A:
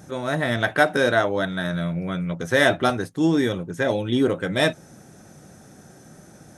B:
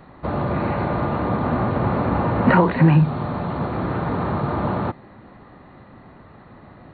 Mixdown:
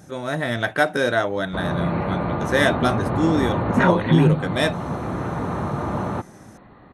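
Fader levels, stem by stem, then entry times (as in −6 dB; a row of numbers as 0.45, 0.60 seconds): −1.0, −2.5 decibels; 0.00, 1.30 seconds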